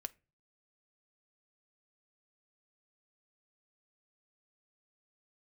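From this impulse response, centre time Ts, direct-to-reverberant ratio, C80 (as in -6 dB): 2 ms, 11.5 dB, 30.5 dB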